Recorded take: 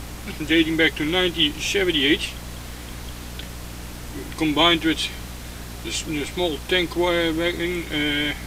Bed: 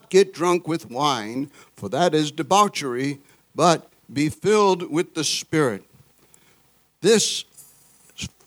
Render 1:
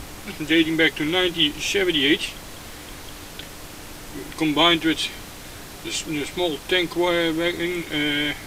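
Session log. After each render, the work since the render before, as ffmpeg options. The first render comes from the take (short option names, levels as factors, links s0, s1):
-af "bandreject=f=60:t=h:w=6,bandreject=f=120:t=h:w=6,bandreject=f=180:t=h:w=6,bandreject=f=240:t=h:w=6"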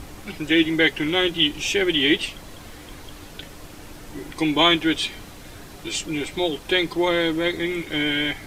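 -af "afftdn=nr=6:nf=-39"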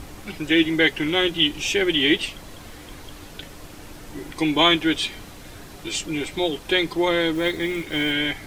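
-filter_complex "[0:a]asettb=1/sr,asplit=3[s0][s1][s2];[s0]atrim=end=7.354[s3];[s1]atrim=start=7.35:end=8.12,asetpts=PTS-STARTPTS,afade=t=in:d=0.004:c=qsin,afade=t=out:st=0.766:d=0.004:c=qsin,acrusher=bits=6:mode=log:mix=0:aa=0.000001[s4];[s2]atrim=start=8.116[s5];[s3][s4]acrossfade=d=0.004:c1=hsin:c2=qsin[s6];[s6][s5]acrossfade=d=0.004:c1=qsin:c2=hsin"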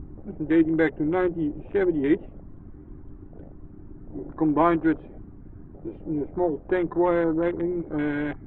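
-af "lowpass=f=1400:w=0.5412,lowpass=f=1400:w=1.3066,afwtdn=0.0178"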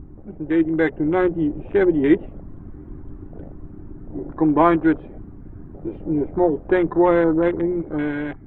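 -af "dynaudnorm=f=370:g=5:m=2.24"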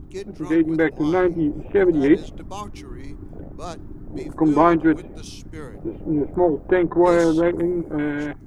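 -filter_complex "[1:a]volume=0.133[s0];[0:a][s0]amix=inputs=2:normalize=0"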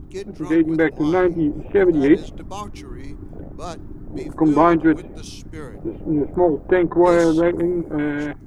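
-af "volume=1.19,alimiter=limit=0.794:level=0:latency=1"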